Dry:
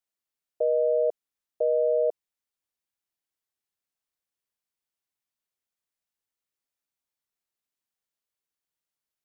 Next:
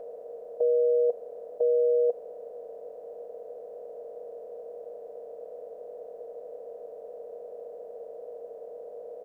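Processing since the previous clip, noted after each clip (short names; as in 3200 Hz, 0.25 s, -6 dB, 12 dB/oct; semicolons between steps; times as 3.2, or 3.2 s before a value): per-bin compression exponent 0.2; notch 510 Hz, Q 12; comb 4 ms, depth 71%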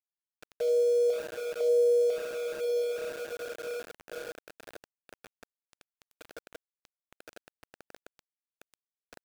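diffused feedback echo 0.956 s, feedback 43%, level -5.5 dB; Schroeder reverb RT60 1.3 s, combs from 29 ms, DRR 4 dB; sample gate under -30.5 dBFS; gain -6 dB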